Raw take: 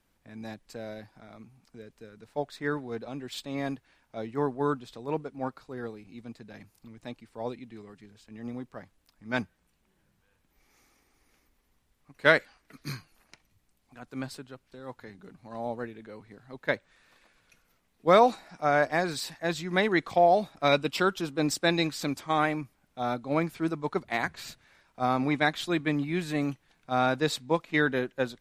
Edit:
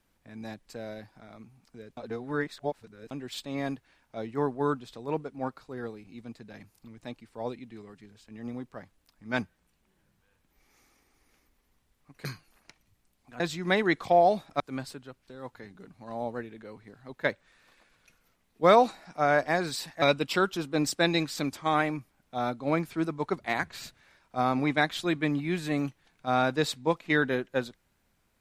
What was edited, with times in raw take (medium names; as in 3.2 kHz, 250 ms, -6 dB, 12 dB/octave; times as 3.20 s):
1.97–3.11 s: reverse
12.25–12.89 s: delete
19.46–20.66 s: move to 14.04 s